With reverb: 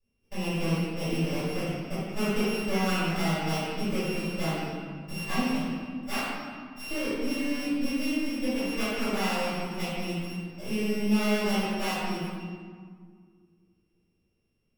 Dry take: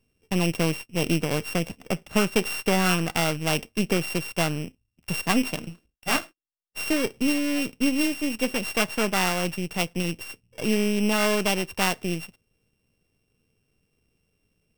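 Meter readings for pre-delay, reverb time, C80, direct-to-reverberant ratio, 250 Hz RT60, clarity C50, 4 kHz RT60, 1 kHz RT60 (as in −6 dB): 3 ms, 1.9 s, −1.5 dB, −15.5 dB, 2.8 s, −4.5 dB, 1.1 s, 1.9 s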